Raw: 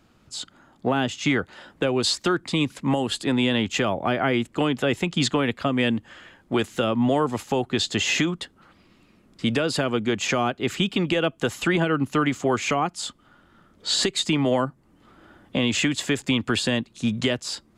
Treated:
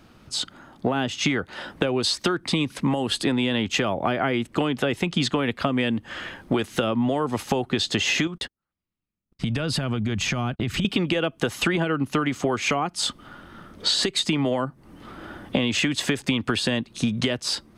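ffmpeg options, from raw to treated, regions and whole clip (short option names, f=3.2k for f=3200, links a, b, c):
-filter_complex "[0:a]asettb=1/sr,asplit=3[a][b][c];[a]atrim=end=8.274[d];[b]atrim=start=8.27:end=10.85,asetpts=PTS-STARTPTS,afade=t=in:d=0.004:c=qsin,afade=t=out:st=2.576:d=0.004:c=qsin,asubboost=boost=10.5:cutoff=160,acompressor=threshold=-32dB:ratio=12:attack=3.2:release=140:knee=1:detection=peak,agate=range=-47dB:threshold=-44dB:ratio=16:release=100:detection=peak[e];[c]atrim=start=10.846[f];[d][e]acrossfade=d=0.004:c1=hsin:c2=qsin[g];[g][f]acrossfade=d=0.004:c1=qsin:c2=hsin,dynaudnorm=f=720:g=5:m=5dB,bandreject=f=7.2k:w=6.3,acompressor=threshold=-27dB:ratio=10,volume=7dB"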